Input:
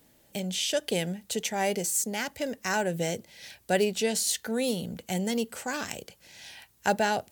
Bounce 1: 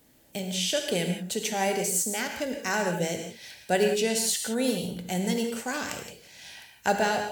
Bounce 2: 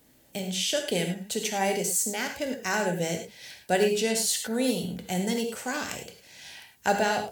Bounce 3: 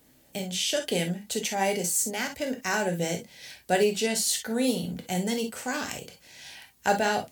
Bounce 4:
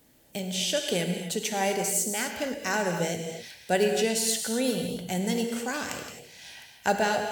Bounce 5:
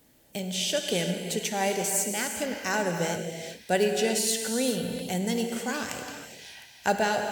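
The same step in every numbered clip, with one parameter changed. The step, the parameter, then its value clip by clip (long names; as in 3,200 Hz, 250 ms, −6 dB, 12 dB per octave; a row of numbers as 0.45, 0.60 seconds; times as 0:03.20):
reverb whose tail is shaped and stops, gate: 200, 130, 80, 290, 440 milliseconds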